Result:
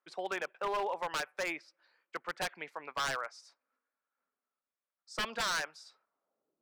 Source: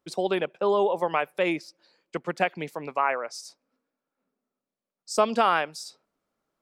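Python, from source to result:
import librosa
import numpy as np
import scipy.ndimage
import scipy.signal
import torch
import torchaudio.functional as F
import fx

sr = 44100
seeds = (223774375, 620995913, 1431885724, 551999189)

y = fx.filter_sweep_bandpass(x, sr, from_hz=1500.0, to_hz=320.0, start_s=6.0, end_s=6.58, q=1.5)
y = 10.0 ** (-27.0 / 20.0) * (np.abs((y / 10.0 ** (-27.0 / 20.0) + 3.0) % 4.0 - 2.0) - 1.0)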